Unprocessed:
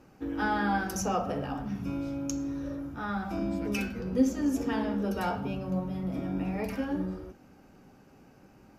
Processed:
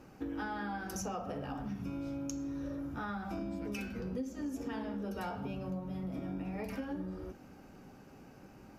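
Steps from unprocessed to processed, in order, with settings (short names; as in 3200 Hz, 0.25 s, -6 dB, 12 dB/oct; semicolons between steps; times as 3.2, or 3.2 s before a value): compressor 6:1, threshold -38 dBFS, peak gain reduction 18.5 dB; gain +1.5 dB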